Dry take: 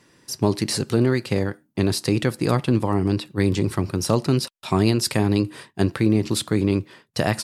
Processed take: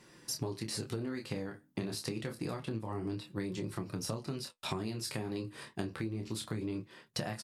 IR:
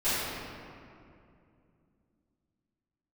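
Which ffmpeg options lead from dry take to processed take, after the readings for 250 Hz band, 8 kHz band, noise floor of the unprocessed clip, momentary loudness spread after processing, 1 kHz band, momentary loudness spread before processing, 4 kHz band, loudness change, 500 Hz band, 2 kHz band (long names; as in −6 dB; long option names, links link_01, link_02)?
−17.5 dB, −12.5 dB, −65 dBFS, 4 LU, −16.0 dB, 5 LU, −13.0 dB, −16.5 dB, −17.0 dB, −15.0 dB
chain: -filter_complex "[0:a]asplit=2[link_01][link_02];[link_02]adelay=27,volume=-6dB[link_03];[link_01][link_03]amix=inputs=2:normalize=0,flanger=delay=5.5:depth=9.8:regen=-45:speed=0.28:shape=sinusoidal,acompressor=threshold=-35dB:ratio=12,volume=1dB"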